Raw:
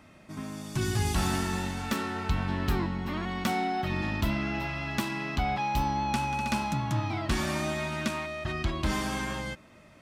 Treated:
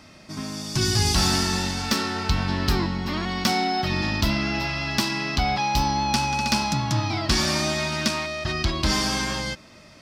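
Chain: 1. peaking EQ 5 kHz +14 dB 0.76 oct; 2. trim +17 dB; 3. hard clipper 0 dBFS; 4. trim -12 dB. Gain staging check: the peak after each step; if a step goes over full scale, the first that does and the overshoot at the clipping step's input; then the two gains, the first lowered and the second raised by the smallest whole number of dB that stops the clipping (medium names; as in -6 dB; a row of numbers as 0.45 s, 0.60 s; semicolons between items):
-10.0 dBFS, +7.0 dBFS, 0.0 dBFS, -12.0 dBFS; step 2, 7.0 dB; step 2 +10 dB, step 4 -5 dB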